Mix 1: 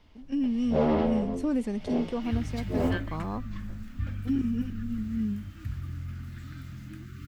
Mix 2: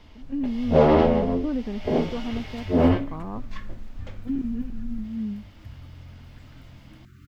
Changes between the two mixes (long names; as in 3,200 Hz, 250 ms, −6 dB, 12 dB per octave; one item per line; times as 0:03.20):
speech: add Gaussian smoothing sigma 3.5 samples
first sound +9.0 dB
second sound −7.5 dB